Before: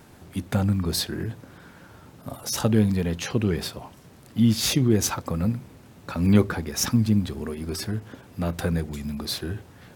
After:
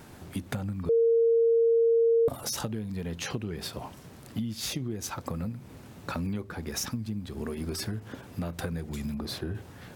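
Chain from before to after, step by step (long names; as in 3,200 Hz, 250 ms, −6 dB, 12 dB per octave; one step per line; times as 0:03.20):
0:09.14–0:09.55: high-shelf EQ 2,100 Hz −10.5 dB
downward compressor 16 to 1, threshold −31 dBFS, peak gain reduction 20 dB
0:00.89–0:02.28: beep over 460 Hz −20.5 dBFS
level +1.5 dB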